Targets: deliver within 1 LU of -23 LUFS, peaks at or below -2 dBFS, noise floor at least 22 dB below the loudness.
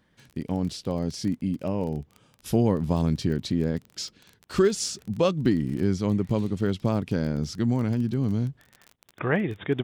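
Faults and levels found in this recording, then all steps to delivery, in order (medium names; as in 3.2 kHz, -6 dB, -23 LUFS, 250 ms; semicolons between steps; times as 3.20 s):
tick rate 25 per s; loudness -26.5 LUFS; peak level -10.0 dBFS; loudness target -23.0 LUFS
-> de-click; trim +3.5 dB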